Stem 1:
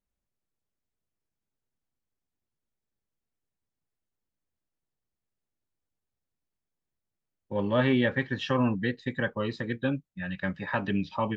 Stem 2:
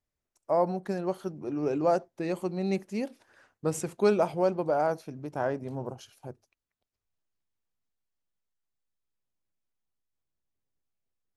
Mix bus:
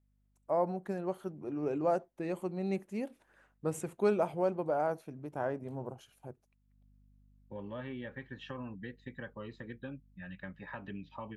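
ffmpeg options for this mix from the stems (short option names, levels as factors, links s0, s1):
-filter_complex "[0:a]acompressor=threshold=0.0316:ratio=3,aeval=exprs='val(0)+0.00251*(sin(2*PI*50*n/s)+sin(2*PI*2*50*n/s)/2+sin(2*PI*3*50*n/s)/3+sin(2*PI*4*50*n/s)/4+sin(2*PI*5*50*n/s)/5)':c=same,volume=0.299,afade=t=in:st=6.64:d=0.21:silence=0.334965[s0];[1:a]volume=0.562,asplit=2[s1][s2];[s2]apad=whole_len=501191[s3];[s0][s3]sidechaincompress=threshold=0.00447:ratio=8:attack=16:release=347[s4];[s4][s1]amix=inputs=2:normalize=0,equalizer=f=5100:t=o:w=0.75:g=-10"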